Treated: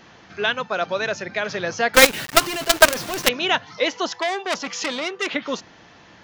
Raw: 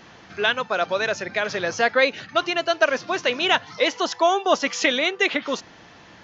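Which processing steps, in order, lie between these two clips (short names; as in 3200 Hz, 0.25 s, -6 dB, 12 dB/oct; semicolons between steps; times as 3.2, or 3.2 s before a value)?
dynamic EQ 160 Hz, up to +4 dB, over -39 dBFS, Q 1.2; 1.94–3.29 companded quantiser 2-bit; 4.12–5.27 core saturation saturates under 3600 Hz; gain -1 dB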